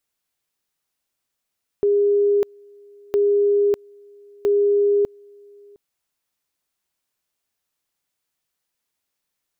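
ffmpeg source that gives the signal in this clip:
-f lavfi -i "aevalsrc='pow(10,(-14-29.5*gte(mod(t,1.31),0.6))/20)*sin(2*PI*407*t)':d=3.93:s=44100"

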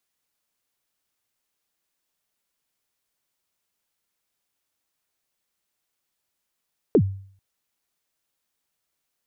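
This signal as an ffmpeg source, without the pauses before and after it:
-f lavfi -i "aevalsrc='0.316*pow(10,-3*t/0.53)*sin(2*PI*(500*0.069/log(97/500)*(exp(log(97/500)*min(t,0.069)/0.069)-1)+97*max(t-0.069,0)))':d=0.44:s=44100"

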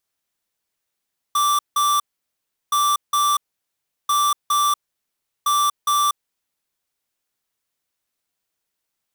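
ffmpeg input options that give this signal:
-f lavfi -i "aevalsrc='0.126*(2*lt(mod(1170*t,1),0.5)-1)*clip(min(mod(mod(t,1.37),0.41),0.24-mod(mod(t,1.37),0.41))/0.005,0,1)*lt(mod(t,1.37),0.82)':d=5.48:s=44100"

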